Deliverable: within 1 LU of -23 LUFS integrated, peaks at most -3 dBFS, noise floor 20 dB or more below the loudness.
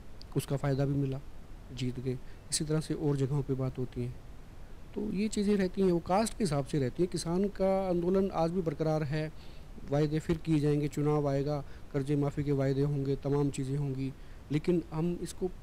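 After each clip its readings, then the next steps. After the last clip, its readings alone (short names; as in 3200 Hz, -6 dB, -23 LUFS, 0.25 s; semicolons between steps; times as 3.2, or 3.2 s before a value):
clipped 0.3%; flat tops at -20.0 dBFS; noise floor -48 dBFS; noise floor target -52 dBFS; loudness -32.0 LUFS; peak -20.0 dBFS; loudness target -23.0 LUFS
-> clip repair -20 dBFS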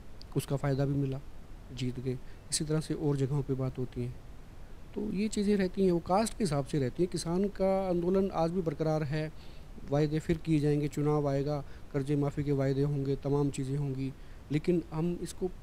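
clipped 0.0%; noise floor -48 dBFS; noise floor target -52 dBFS
-> noise print and reduce 6 dB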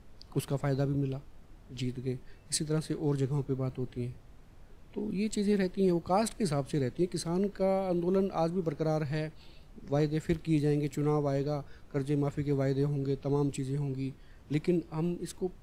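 noise floor -54 dBFS; loudness -32.0 LUFS; peak -15.5 dBFS; loudness target -23.0 LUFS
-> gain +9 dB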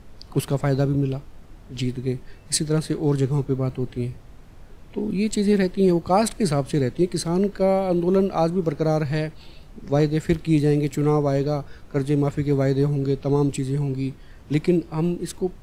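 loudness -23.0 LUFS; peak -6.5 dBFS; noise floor -45 dBFS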